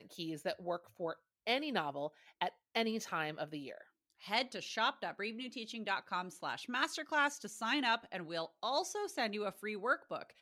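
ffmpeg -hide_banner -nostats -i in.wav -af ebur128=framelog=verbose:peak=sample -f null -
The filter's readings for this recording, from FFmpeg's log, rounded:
Integrated loudness:
  I:         -38.0 LUFS
  Threshold: -48.1 LUFS
Loudness range:
  LRA:         2.9 LU
  Threshold: -57.9 LUFS
  LRA low:   -39.3 LUFS
  LRA high:  -36.4 LUFS
Sample peak:
  Peak:      -18.6 dBFS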